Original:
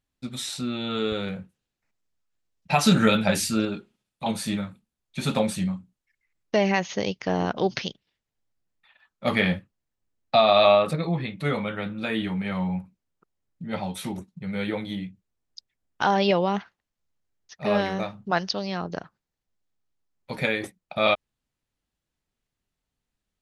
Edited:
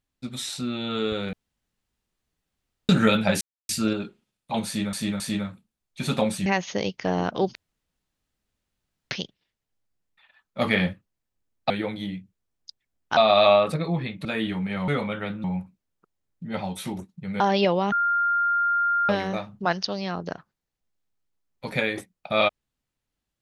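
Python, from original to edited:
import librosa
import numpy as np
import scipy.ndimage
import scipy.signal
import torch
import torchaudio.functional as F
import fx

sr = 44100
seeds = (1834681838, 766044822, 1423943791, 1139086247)

y = fx.edit(x, sr, fx.room_tone_fill(start_s=1.33, length_s=1.56),
    fx.insert_silence(at_s=3.41, length_s=0.28),
    fx.repeat(start_s=4.38, length_s=0.27, count=3),
    fx.cut(start_s=5.64, length_s=1.04),
    fx.insert_room_tone(at_s=7.77, length_s=1.56),
    fx.move(start_s=11.44, length_s=0.56, to_s=12.63),
    fx.move(start_s=14.59, length_s=1.47, to_s=10.36),
    fx.bleep(start_s=16.58, length_s=1.17, hz=1400.0, db=-19.5), tone=tone)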